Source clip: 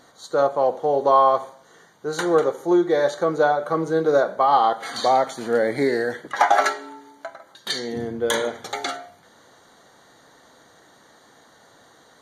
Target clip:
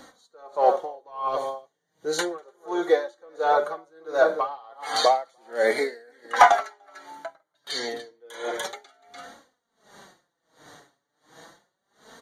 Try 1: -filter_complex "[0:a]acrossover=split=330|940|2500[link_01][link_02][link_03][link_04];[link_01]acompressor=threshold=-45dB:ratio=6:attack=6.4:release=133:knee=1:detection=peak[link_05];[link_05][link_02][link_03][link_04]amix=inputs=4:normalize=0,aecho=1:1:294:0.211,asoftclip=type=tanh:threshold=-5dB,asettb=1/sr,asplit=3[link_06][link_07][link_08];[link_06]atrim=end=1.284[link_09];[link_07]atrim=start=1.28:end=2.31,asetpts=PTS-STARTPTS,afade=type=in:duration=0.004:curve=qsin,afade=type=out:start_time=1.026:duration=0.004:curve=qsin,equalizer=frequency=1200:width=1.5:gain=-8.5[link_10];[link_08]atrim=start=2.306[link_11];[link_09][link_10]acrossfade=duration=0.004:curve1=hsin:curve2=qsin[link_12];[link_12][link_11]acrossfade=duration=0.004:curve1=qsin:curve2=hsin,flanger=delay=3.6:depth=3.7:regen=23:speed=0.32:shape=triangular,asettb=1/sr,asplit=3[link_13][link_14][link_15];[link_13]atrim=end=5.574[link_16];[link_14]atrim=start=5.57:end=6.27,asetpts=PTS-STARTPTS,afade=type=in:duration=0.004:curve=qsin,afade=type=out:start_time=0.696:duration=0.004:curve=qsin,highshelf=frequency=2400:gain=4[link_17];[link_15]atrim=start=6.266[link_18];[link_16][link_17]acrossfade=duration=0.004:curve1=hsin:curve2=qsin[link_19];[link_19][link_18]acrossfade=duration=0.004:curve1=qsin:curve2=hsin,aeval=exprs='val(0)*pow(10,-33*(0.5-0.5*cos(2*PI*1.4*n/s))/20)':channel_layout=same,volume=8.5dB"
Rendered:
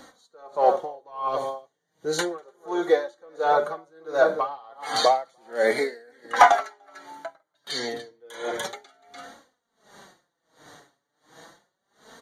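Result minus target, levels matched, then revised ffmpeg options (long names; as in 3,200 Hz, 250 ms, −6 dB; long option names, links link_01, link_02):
downward compressor: peak gain reduction −9.5 dB
-filter_complex "[0:a]acrossover=split=330|940|2500[link_01][link_02][link_03][link_04];[link_01]acompressor=threshold=-56.5dB:ratio=6:attack=6.4:release=133:knee=1:detection=peak[link_05];[link_05][link_02][link_03][link_04]amix=inputs=4:normalize=0,aecho=1:1:294:0.211,asoftclip=type=tanh:threshold=-5dB,asettb=1/sr,asplit=3[link_06][link_07][link_08];[link_06]atrim=end=1.284[link_09];[link_07]atrim=start=1.28:end=2.31,asetpts=PTS-STARTPTS,afade=type=in:duration=0.004:curve=qsin,afade=type=out:start_time=1.026:duration=0.004:curve=qsin,equalizer=frequency=1200:width=1.5:gain=-8.5[link_10];[link_08]atrim=start=2.306[link_11];[link_09][link_10]acrossfade=duration=0.004:curve1=hsin:curve2=qsin[link_12];[link_12][link_11]acrossfade=duration=0.004:curve1=qsin:curve2=hsin,flanger=delay=3.6:depth=3.7:regen=23:speed=0.32:shape=triangular,asettb=1/sr,asplit=3[link_13][link_14][link_15];[link_13]atrim=end=5.574[link_16];[link_14]atrim=start=5.57:end=6.27,asetpts=PTS-STARTPTS,afade=type=in:duration=0.004:curve=qsin,afade=type=out:start_time=0.696:duration=0.004:curve=qsin,highshelf=frequency=2400:gain=4[link_17];[link_15]atrim=start=6.266[link_18];[link_16][link_17]acrossfade=duration=0.004:curve1=hsin:curve2=qsin[link_19];[link_19][link_18]acrossfade=duration=0.004:curve1=qsin:curve2=hsin,aeval=exprs='val(0)*pow(10,-33*(0.5-0.5*cos(2*PI*1.4*n/s))/20)':channel_layout=same,volume=8.5dB"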